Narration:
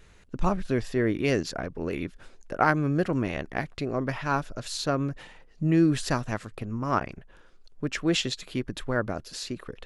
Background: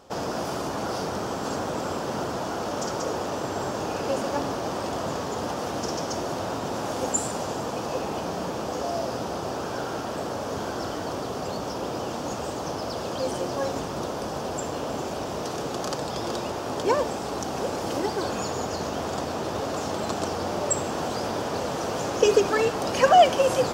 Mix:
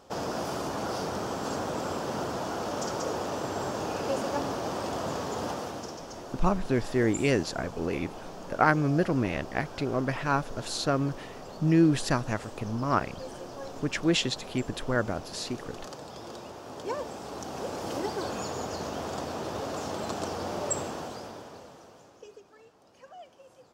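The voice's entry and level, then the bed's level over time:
6.00 s, 0.0 dB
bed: 0:05.50 −3 dB
0:06.01 −12.5 dB
0:16.62 −12.5 dB
0:17.92 −5 dB
0:20.81 −5 dB
0:22.44 −33 dB

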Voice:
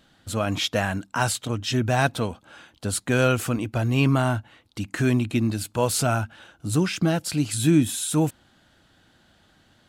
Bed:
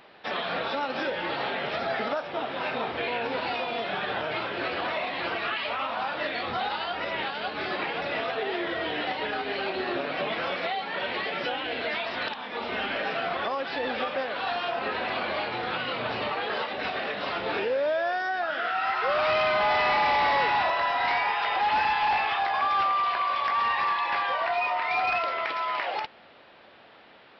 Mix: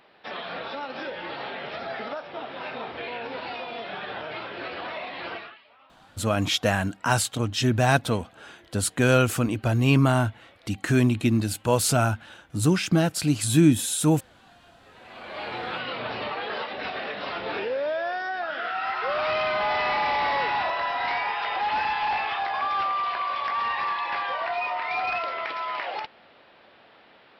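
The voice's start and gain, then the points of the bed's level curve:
5.90 s, +1.0 dB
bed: 0:05.36 −4.5 dB
0:05.64 −26.5 dB
0:14.82 −26.5 dB
0:15.49 −1.5 dB

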